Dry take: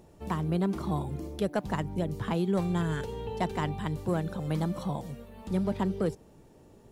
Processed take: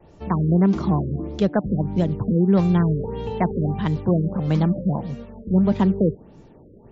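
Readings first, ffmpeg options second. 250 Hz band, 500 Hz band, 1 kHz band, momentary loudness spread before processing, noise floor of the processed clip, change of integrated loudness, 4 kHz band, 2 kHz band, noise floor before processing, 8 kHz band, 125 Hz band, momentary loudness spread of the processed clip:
+11.0 dB, +8.0 dB, +5.5 dB, 7 LU, -48 dBFS, +10.0 dB, +2.0 dB, +2.5 dB, -56 dBFS, n/a, +11.0 dB, 8 LU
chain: -af "acrusher=bits=8:mode=log:mix=0:aa=0.000001,adynamicequalizer=threshold=0.00891:dfrequency=200:dqfactor=1.2:tfrequency=200:tqfactor=1.2:attack=5:release=100:ratio=0.375:range=2.5:mode=boostabove:tftype=bell,afftfilt=real='re*lt(b*sr/1024,570*pow(7600/570,0.5+0.5*sin(2*PI*1.6*pts/sr)))':imag='im*lt(b*sr/1024,570*pow(7600/570,0.5+0.5*sin(2*PI*1.6*pts/sr)))':win_size=1024:overlap=0.75,volume=7dB"

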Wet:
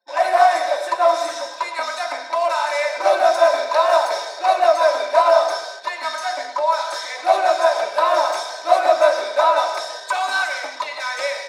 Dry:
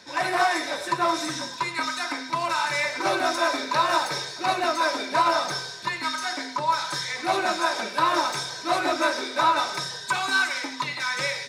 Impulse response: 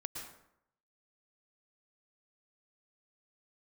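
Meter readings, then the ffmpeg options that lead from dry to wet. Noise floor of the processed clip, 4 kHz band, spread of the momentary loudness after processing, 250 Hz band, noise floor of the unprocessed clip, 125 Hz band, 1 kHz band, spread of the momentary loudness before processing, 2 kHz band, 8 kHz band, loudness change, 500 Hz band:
-34 dBFS, 0.0 dB, 11 LU, -9.0 dB, -37 dBFS, under -25 dB, +6.5 dB, 6 LU, +1.5 dB, 0.0 dB, +6.0 dB, +12.5 dB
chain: -filter_complex "[0:a]asplit=2[a][b];[1:a]atrim=start_sample=2205[c];[b][c]afir=irnorm=-1:irlink=0,volume=-2.5dB[d];[a][d]amix=inputs=2:normalize=0,anlmdn=3.98,highpass=f=630:t=q:w=5.6,volume=-4dB"

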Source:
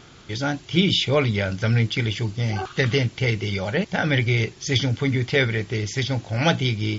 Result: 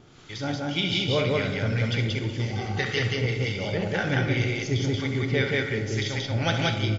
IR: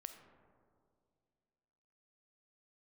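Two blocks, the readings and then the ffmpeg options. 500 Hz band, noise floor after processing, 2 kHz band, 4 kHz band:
-3.0 dB, -37 dBFS, -3.0 dB, -3.5 dB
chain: -filter_complex "[0:a]acrossover=split=840[a][b];[a]aeval=exprs='val(0)*(1-0.7/2+0.7/2*cos(2*PI*1.9*n/s))':c=same[c];[b]aeval=exprs='val(0)*(1-0.7/2-0.7/2*cos(2*PI*1.9*n/s))':c=same[d];[c][d]amix=inputs=2:normalize=0,aecho=1:1:67.06|180.8:0.355|0.891[e];[1:a]atrim=start_sample=2205[f];[e][f]afir=irnorm=-1:irlink=0,volume=2.5dB"

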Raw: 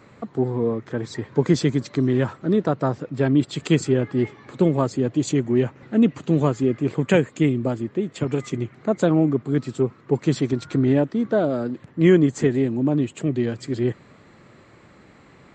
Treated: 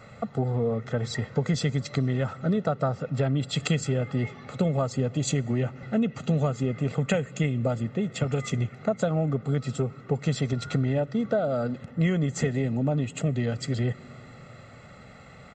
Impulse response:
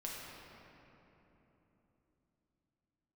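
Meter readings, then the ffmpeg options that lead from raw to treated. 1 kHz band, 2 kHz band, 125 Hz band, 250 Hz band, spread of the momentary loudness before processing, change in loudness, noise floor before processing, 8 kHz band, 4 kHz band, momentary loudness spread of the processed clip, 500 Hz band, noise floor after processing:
-3.5 dB, -3.5 dB, -1.5 dB, -8.0 dB, 7 LU, -5.5 dB, -51 dBFS, 0.0 dB, -0.5 dB, 4 LU, -6.5 dB, -48 dBFS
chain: -filter_complex "[0:a]aecho=1:1:1.5:0.8,acompressor=threshold=-22dB:ratio=6,asplit=2[a][b];[b]asuperstop=centerf=660:order=4:qfactor=2.6[c];[1:a]atrim=start_sample=2205[d];[c][d]afir=irnorm=-1:irlink=0,volume=-19dB[e];[a][e]amix=inputs=2:normalize=0"

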